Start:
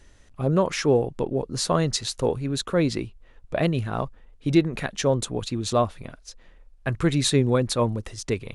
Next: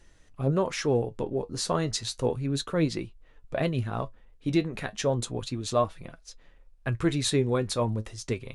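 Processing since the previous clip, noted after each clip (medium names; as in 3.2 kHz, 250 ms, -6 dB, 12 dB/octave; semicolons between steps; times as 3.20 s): flange 0.33 Hz, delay 5.7 ms, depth 4.9 ms, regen +59%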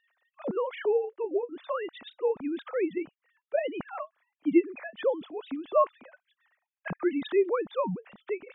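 formants replaced by sine waves; trim -1.5 dB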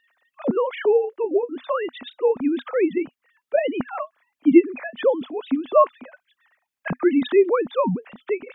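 peaking EQ 250 Hz +9 dB 0.31 oct; trim +7.5 dB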